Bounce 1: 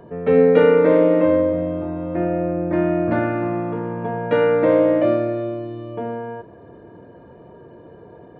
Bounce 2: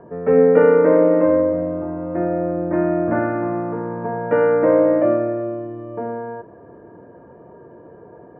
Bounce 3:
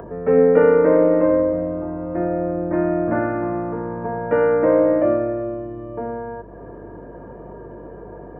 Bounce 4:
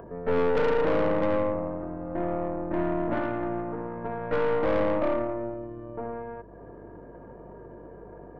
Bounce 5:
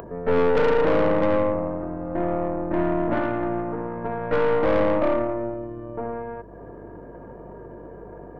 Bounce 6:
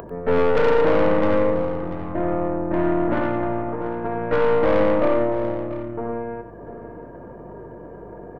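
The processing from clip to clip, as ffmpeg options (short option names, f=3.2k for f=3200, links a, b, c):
-af "lowpass=f=1.8k:w=0.5412,lowpass=f=1.8k:w=1.3066,lowshelf=f=150:g=-7,volume=1.5dB"
-af "acompressor=mode=upward:threshold=-28dB:ratio=2.5,aeval=exprs='val(0)+0.00708*(sin(2*PI*50*n/s)+sin(2*PI*2*50*n/s)/2+sin(2*PI*3*50*n/s)/3+sin(2*PI*4*50*n/s)/4+sin(2*PI*5*50*n/s)/5)':c=same,volume=-1dB"
-af "aeval=exprs='(tanh(7.94*val(0)+0.8)-tanh(0.8))/7.94':c=same,volume=-3dB"
-af "acompressor=mode=upward:threshold=-43dB:ratio=2.5,volume=4.5dB"
-af "aecho=1:1:94|690:0.335|0.211,volume=1.5dB"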